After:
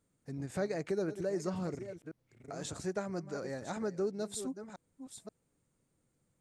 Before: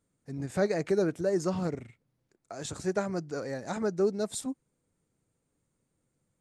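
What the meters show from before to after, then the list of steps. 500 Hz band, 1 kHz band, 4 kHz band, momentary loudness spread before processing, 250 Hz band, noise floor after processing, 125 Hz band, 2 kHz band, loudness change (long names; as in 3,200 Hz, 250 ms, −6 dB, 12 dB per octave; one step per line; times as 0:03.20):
−6.5 dB, −6.0 dB, −4.5 dB, 13 LU, −6.0 dB, −79 dBFS, −5.5 dB, −6.0 dB, −7.0 dB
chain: delay that plays each chunk backwards 529 ms, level −13.5 dB
downward compressor 1.5 to 1, threshold −44 dBFS, peak gain reduction 8 dB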